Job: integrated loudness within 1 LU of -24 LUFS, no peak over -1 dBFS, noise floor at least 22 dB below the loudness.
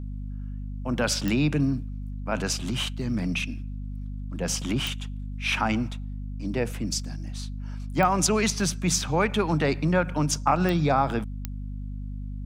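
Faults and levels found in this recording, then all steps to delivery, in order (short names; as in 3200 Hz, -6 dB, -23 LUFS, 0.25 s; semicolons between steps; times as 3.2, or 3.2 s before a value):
clicks 5; hum 50 Hz; harmonics up to 250 Hz; hum level -31 dBFS; loudness -26.5 LUFS; peak -8.0 dBFS; loudness target -24.0 LUFS
-> de-click; notches 50/100/150/200/250 Hz; gain +2.5 dB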